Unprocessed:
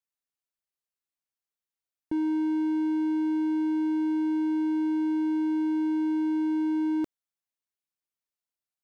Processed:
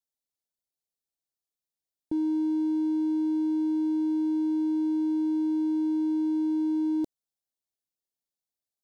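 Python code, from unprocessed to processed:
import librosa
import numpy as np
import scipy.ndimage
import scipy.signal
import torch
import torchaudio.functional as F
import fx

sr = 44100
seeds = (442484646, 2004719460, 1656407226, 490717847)

y = fx.band_shelf(x, sr, hz=1700.0, db=-13.0, octaves=1.7)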